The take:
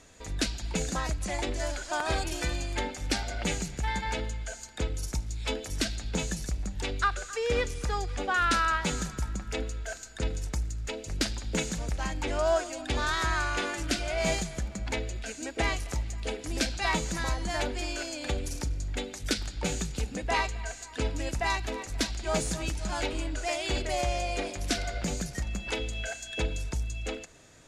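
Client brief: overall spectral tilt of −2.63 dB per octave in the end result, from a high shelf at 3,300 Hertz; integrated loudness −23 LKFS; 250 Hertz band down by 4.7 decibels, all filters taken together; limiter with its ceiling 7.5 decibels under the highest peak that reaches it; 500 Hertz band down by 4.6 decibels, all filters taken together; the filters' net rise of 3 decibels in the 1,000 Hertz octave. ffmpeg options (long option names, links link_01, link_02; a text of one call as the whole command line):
ffmpeg -i in.wav -af "equalizer=frequency=250:width_type=o:gain=-4.5,equalizer=frequency=500:width_type=o:gain=-8,equalizer=frequency=1000:width_type=o:gain=6,highshelf=frequency=3300:gain=4,volume=9dB,alimiter=limit=-10dB:level=0:latency=1" out.wav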